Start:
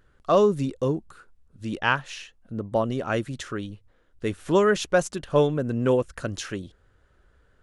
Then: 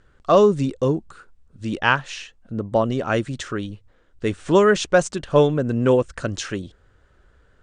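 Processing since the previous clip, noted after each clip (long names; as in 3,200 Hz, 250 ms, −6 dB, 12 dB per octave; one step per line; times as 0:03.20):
Butterworth low-pass 9,200 Hz 96 dB per octave
level +4.5 dB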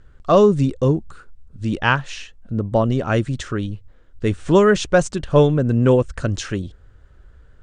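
low-shelf EQ 150 Hz +11.5 dB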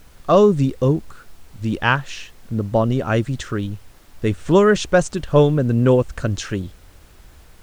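background noise pink −52 dBFS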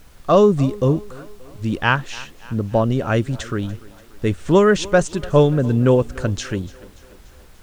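feedback echo with a high-pass in the loop 290 ms, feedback 58%, high-pass 200 Hz, level −20 dB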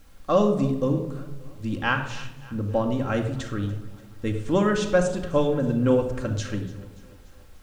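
rectangular room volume 2,600 cubic metres, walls furnished, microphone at 2.2 metres
level −8 dB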